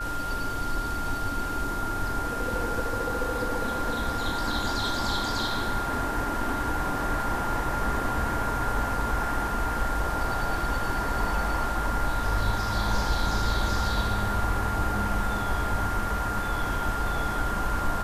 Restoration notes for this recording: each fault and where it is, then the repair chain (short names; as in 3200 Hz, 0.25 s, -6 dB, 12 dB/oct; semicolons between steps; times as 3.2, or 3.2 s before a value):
tone 1400 Hz -31 dBFS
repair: notch 1400 Hz, Q 30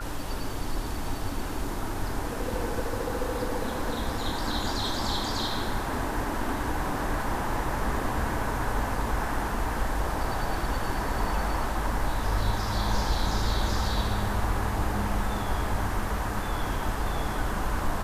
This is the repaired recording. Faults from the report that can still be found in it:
none